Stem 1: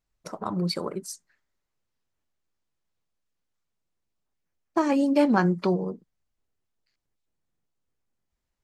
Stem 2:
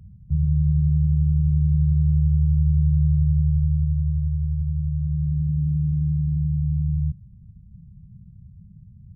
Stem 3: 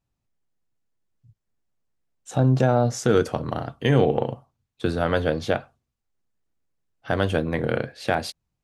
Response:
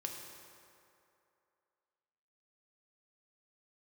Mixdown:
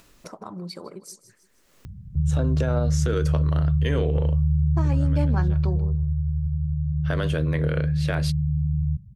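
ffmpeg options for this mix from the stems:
-filter_complex "[0:a]volume=0.355,asplit=3[s0][s1][s2];[s1]volume=0.106[s3];[1:a]adelay=1850,volume=0.891[s4];[2:a]highpass=300,volume=0.944[s5];[s2]apad=whole_len=380964[s6];[s5][s6]sidechaincompress=threshold=0.00126:ratio=3:attack=16:release=232[s7];[s4][s7]amix=inputs=2:normalize=0,equalizer=f=780:w=4.6:g=-14,alimiter=limit=0.2:level=0:latency=1:release=45,volume=1[s8];[s3]aecho=0:1:157|314|471:1|0.21|0.0441[s9];[s0][s8][s9]amix=inputs=3:normalize=0,acompressor=mode=upward:threshold=0.0251:ratio=2.5"

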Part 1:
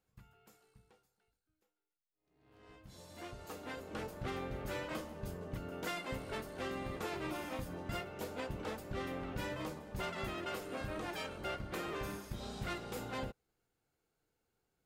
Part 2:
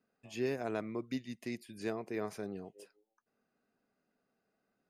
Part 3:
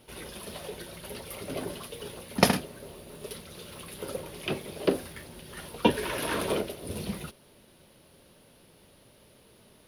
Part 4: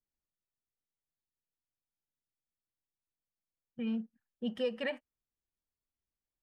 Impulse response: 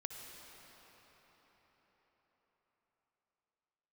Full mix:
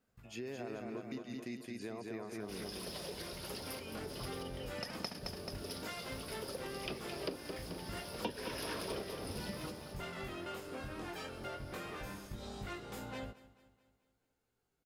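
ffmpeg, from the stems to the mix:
-filter_complex "[0:a]flanger=delay=17.5:depth=5.9:speed=0.14,volume=1.19,asplit=2[s0][s1];[s1]volume=0.0944[s2];[1:a]alimiter=level_in=1.78:limit=0.0631:level=0:latency=1,volume=0.562,volume=0.841,asplit=2[s3][s4];[s4]volume=0.668[s5];[2:a]equalizer=f=5100:w=4.5:g=14.5,adelay=2400,volume=0.631,asplit=2[s6][s7];[s7]volume=0.282[s8];[3:a]highpass=710,acompressor=threshold=0.00631:ratio=6,volume=0.841,asplit=2[s9][s10];[s10]apad=whole_len=541183[s11];[s6][s11]sidechaincompress=threshold=0.001:ratio=8:attack=5.3:release=323[s12];[s2][s5][s8]amix=inputs=3:normalize=0,aecho=0:1:217|434|651|868|1085|1302|1519:1|0.48|0.23|0.111|0.0531|0.0255|0.0122[s13];[s0][s3][s12][s9][s13]amix=inputs=5:normalize=0,acompressor=threshold=0.01:ratio=3"

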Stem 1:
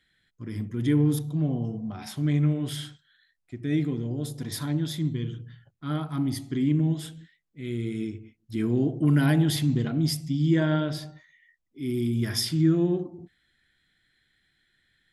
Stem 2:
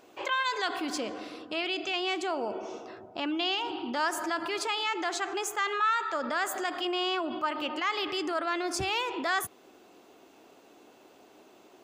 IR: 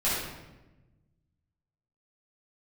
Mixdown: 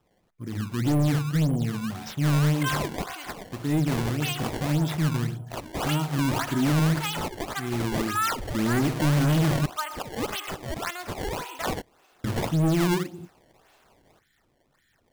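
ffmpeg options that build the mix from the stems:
-filter_complex "[0:a]adynamicequalizer=threshold=0.0251:dfrequency=160:dqfactor=1.8:tfrequency=160:tqfactor=1.8:attack=5:release=100:ratio=0.375:range=2:mode=boostabove:tftype=bell,volume=1.19,asplit=3[s0][s1][s2];[s0]atrim=end=9.66,asetpts=PTS-STARTPTS,afade=t=out:st=9.656:d=0.004:c=hsin[s3];[s1]atrim=start=9.66:end=12.24,asetpts=PTS-STARTPTS,volume=0[s4];[s2]atrim=start=12.24,asetpts=PTS-STARTPTS,afade=t=in:d=0.004:c=hsin[s5];[s3][s4][s5]concat=n=3:v=0:a=1[s6];[1:a]highpass=890,adelay=2350,volume=1.19[s7];[s6][s7]amix=inputs=2:normalize=0,acrusher=samples=20:mix=1:aa=0.000001:lfo=1:lforange=32:lforate=1.8,asoftclip=type=hard:threshold=0.112"

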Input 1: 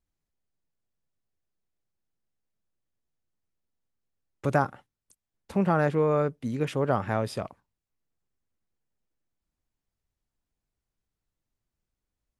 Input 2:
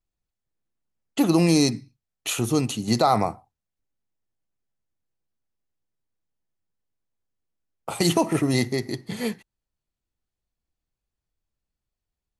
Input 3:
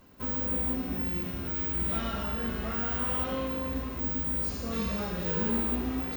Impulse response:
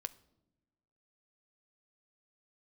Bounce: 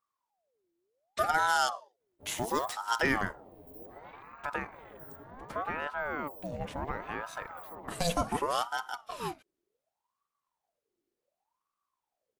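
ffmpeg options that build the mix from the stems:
-filter_complex "[0:a]acompressor=threshold=0.02:ratio=2,volume=0.891,asplit=2[s0][s1];[s1]volume=0.178[s2];[1:a]volume=0.501[s3];[2:a]afwtdn=0.0158,adelay=2000,volume=0.211[s4];[s2]aecho=0:1:955:1[s5];[s0][s3][s4][s5]amix=inputs=4:normalize=0,aeval=exprs='val(0)*sin(2*PI*750*n/s+750*0.55/0.68*sin(2*PI*0.68*n/s))':c=same"

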